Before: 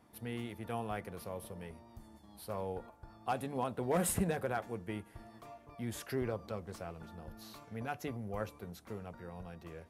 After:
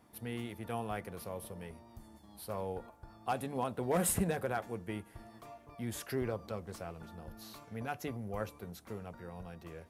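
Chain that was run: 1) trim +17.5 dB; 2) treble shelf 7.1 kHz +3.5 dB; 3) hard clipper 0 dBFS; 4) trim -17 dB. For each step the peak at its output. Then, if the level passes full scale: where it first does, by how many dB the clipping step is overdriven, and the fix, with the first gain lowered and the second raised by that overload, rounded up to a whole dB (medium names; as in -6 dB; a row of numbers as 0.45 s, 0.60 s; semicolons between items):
-4.0 dBFS, -2.5 dBFS, -2.5 dBFS, -19.5 dBFS; nothing clips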